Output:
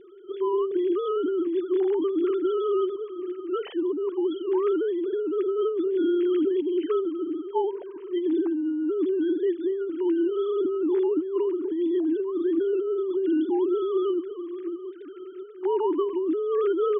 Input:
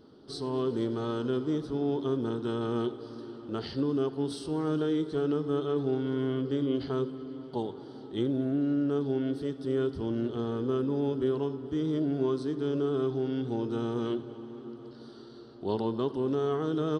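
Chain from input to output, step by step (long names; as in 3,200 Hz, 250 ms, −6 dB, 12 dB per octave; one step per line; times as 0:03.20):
three sine waves on the formant tracks
high-frequency loss of the air 110 metres
compressor whose output falls as the input rises −32 dBFS, ratio −1
level +8 dB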